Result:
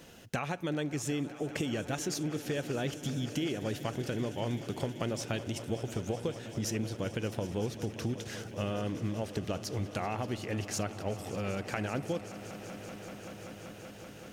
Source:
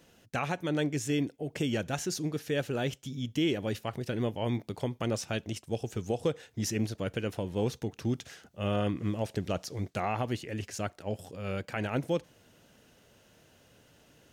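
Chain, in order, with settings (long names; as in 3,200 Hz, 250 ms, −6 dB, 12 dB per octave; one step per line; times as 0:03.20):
downward compressor, threshold −39 dBFS, peak gain reduction 14.5 dB
on a send: echo that builds up and dies away 192 ms, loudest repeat 5, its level −17.5 dB
on the sum: level +7.5 dB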